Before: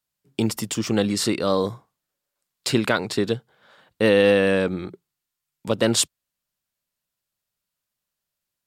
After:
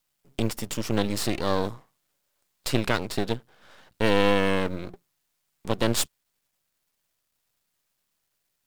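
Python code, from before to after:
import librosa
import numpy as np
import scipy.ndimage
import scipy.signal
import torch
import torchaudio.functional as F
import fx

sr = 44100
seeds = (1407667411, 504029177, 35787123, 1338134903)

y = fx.law_mismatch(x, sr, coded='mu')
y = np.maximum(y, 0.0)
y = F.gain(torch.from_numpy(y), -1.5).numpy()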